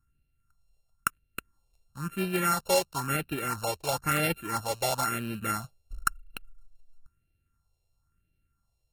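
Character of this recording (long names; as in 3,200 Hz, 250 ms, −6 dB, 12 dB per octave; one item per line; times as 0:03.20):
a buzz of ramps at a fixed pitch in blocks of 32 samples
phaser sweep stages 4, 0.99 Hz, lowest notch 240–1,100 Hz
AAC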